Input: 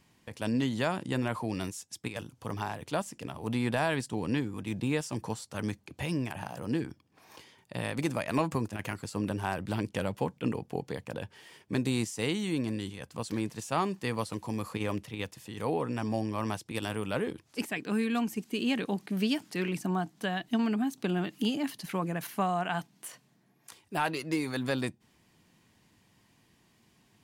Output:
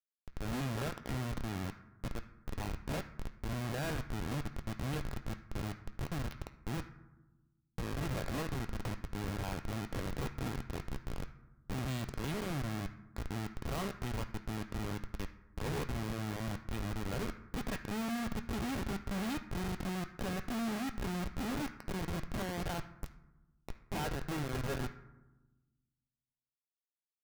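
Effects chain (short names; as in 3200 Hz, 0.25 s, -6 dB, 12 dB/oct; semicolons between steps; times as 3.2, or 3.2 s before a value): spectral swells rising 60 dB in 0.37 s; dynamic EQ 4100 Hz, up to -3 dB, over -55 dBFS, Q 5.2; Schmitt trigger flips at -28.5 dBFS; on a send: band shelf 2700 Hz +14 dB 2.7 oct + reverb RT60 1.1 s, pre-delay 3 ms, DRR 4.5 dB; on the sum: gain -3.5 dB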